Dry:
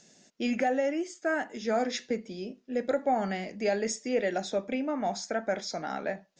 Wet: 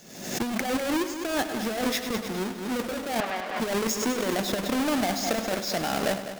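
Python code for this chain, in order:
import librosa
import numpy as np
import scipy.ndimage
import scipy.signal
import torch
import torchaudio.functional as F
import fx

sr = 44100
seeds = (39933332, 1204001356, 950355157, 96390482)

y = fx.halfwave_hold(x, sr)
y = fx.bandpass_edges(y, sr, low_hz=620.0, high_hz=2900.0, at=(3.2, 3.6))
y = fx.over_compress(y, sr, threshold_db=-26.0, ratio=-0.5)
y = fx.echo_heads(y, sr, ms=101, heads='first and second', feedback_pct=47, wet_db=-13.0)
y = fx.pre_swell(y, sr, db_per_s=66.0)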